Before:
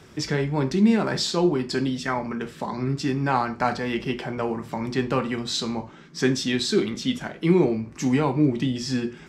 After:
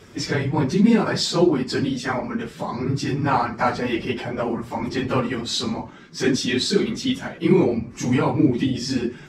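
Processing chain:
random phases in long frames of 50 ms
level +2.5 dB

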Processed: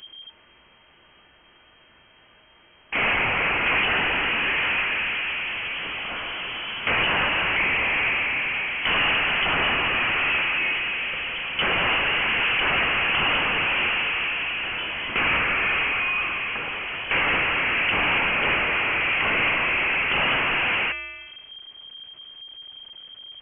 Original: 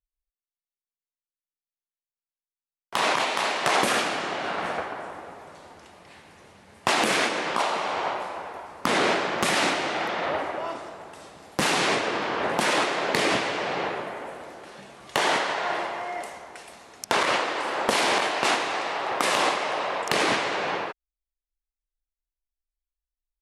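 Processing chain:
hum removal 285.5 Hz, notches 27
power curve on the samples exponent 0.35
voice inversion scrambler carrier 3,200 Hz
level −6.5 dB

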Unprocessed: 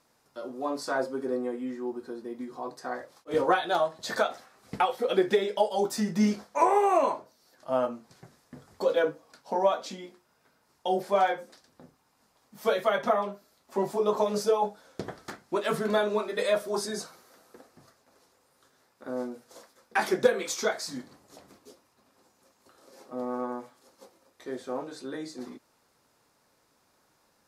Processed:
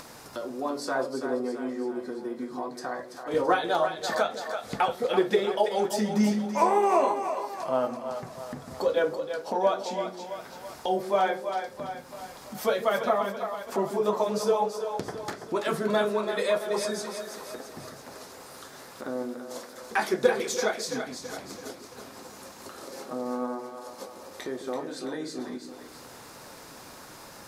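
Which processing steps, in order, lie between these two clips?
upward compression, threshold −29 dBFS
on a send: echo with a time of its own for lows and highs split 450 Hz, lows 148 ms, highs 333 ms, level −7.5 dB

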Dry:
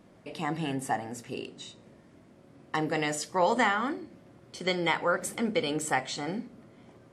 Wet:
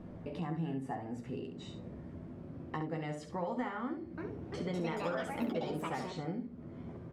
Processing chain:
low-pass filter 1,100 Hz 6 dB per octave
low-shelf EQ 190 Hz +11.5 dB
downward compressor 3 to 1, threshold −46 dBFS, peak gain reduction 19 dB
0:03.83–0:06.28: delay with pitch and tempo change per echo 346 ms, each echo +4 semitones, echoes 2
ambience of single reflections 12 ms −6 dB, 67 ms −8 dB
level +4 dB

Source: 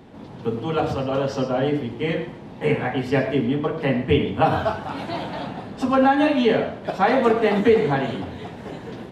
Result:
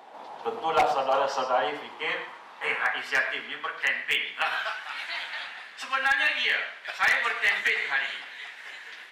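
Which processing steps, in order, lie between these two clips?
dynamic equaliser 150 Hz, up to +5 dB, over −36 dBFS, Q 1.6
high-pass filter sweep 790 Hz → 1,900 Hz, 0:00.93–0:04.38
wave folding −14 dBFS

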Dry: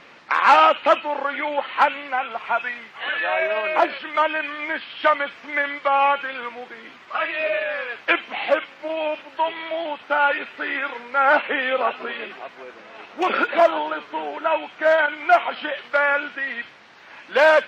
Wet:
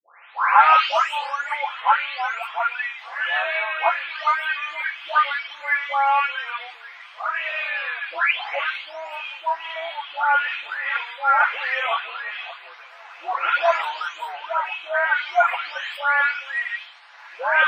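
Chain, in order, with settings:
every frequency bin delayed by itself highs late, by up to 617 ms
high-pass filter 780 Hz 24 dB per octave
level +2.5 dB

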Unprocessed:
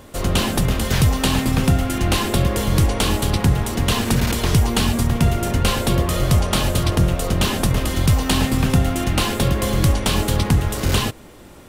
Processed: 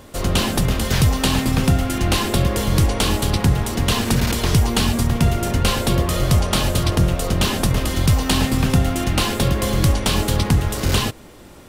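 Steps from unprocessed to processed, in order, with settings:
parametric band 4,900 Hz +2 dB

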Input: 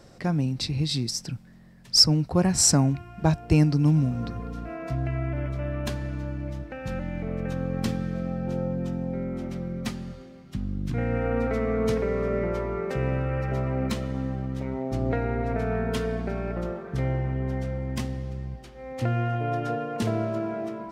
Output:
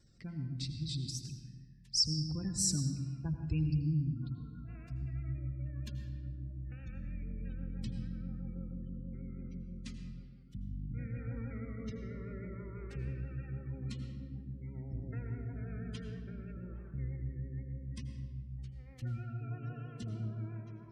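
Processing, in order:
pitch vibrato 6.2 Hz 64 cents
guitar amp tone stack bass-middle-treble 6-0-2
hum removal 84.96 Hz, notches 29
gate on every frequency bin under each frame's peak −30 dB strong
on a send: convolution reverb RT60 1.3 s, pre-delay 77 ms, DRR 6.5 dB
on the sum: level +2.5 dB

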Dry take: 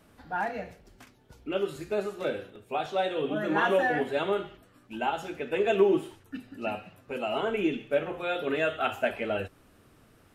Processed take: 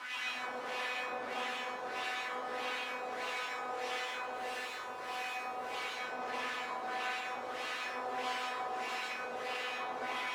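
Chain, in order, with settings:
compressor on every frequency bin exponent 0.2
elliptic band-pass filter 120–3,500 Hz, stop band 40 dB
in parallel at −2 dB: brickwall limiter −15.5 dBFS, peak gain reduction 11 dB
0:04.31–0:05.74: on the sum: leveller curve on the samples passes 3
wrap-around overflow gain 18 dB
auto-filter band-pass sine 1.6 Hz 460–2,600 Hz
tuned comb filter 250 Hz, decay 0.37 s, harmonics all, mix 90%
delay with a low-pass on its return 106 ms, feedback 64%, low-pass 970 Hz, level −3 dB
convolution reverb RT60 0.55 s, pre-delay 122 ms, DRR −3.5 dB

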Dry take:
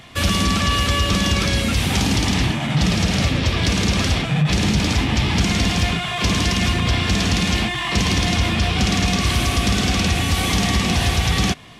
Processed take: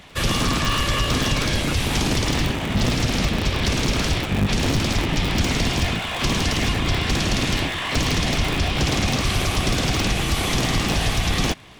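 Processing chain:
sub-harmonics by changed cycles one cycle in 3, inverted
level −2.5 dB

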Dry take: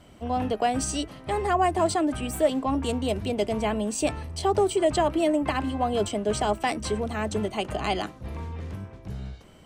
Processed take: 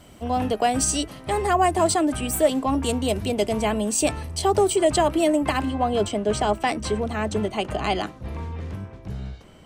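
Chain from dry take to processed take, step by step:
high-shelf EQ 6,800 Hz +9.5 dB, from 0:05.65 −3.5 dB
level +3 dB

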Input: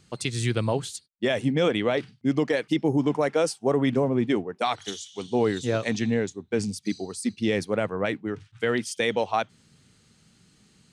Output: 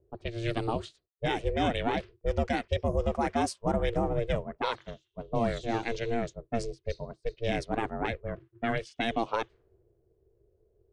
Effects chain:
low-pass that shuts in the quiet parts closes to 330 Hz, open at −19.5 dBFS
high-pass filter 100 Hz 24 dB per octave
ring modulation 230 Hz
level −2 dB

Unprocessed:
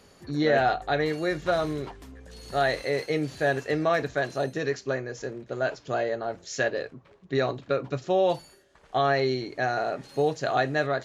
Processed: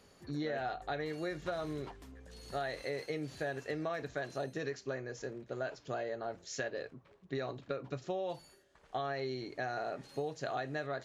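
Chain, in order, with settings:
downward compressor, threshold −27 dBFS, peak gain reduction 9 dB
level −7 dB

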